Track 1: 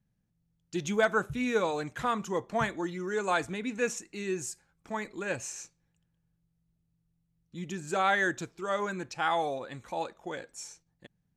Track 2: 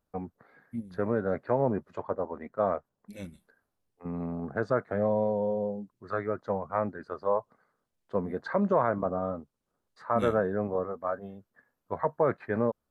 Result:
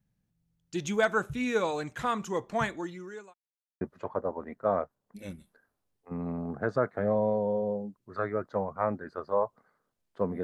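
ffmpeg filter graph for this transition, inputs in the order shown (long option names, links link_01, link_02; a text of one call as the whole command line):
ffmpeg -i cue0.wav -i cue1.wav -filter_complex "[0:a]apad=whole_dur=10.43,atrim=end=10.43,asplit=2[link_01][link_02];[link_01]atrim=end=3.34,asetpts=PTS-STARTPTS,afade=type=out:start_time=2.65:duration=0.69[link_03];[link_02]atrim=start=3.34:end=3.81,asetpts=PTS-STARTPTS,volume=0[link_04];[1:a]atrim=start=1.75:end=8.37,asetpts=PTS-STARTPTS,afade=type=in:duration=0.004:curve=hsin[link_05];[link_03][link_04][link_05]concat=n=3:v=0:a=1" out.wav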